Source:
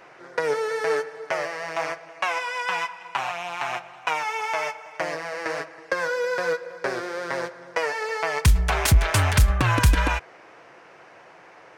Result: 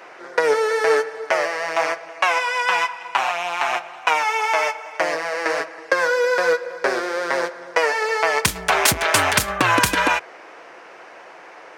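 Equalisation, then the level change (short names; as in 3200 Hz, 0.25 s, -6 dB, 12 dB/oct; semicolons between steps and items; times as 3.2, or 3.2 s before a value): HPF 290 Hz 12 dB/oct; +7.0 dB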